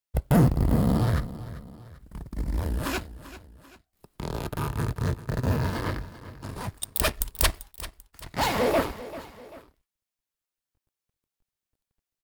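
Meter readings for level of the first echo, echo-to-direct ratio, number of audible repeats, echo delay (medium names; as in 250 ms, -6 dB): -15.5 dB, -14.5 dB, 2, 391 ms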